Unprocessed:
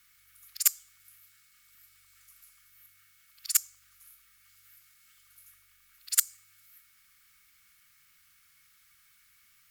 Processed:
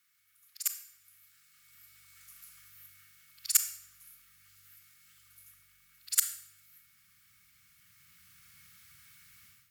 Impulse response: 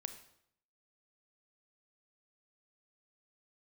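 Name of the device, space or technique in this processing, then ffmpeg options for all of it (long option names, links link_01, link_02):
far laptop microphone: -filter_complex "[1:a]atrim=start_sample=2205[link_01];[0:a][link_01]afir=irnorm=-1:irlink=0,highpass=140,dynaudnorm=framelen=860:gausssize=3:maxgain=15dB,asubboost=boost=10.5:cutoff=140,volume=-6.5dB"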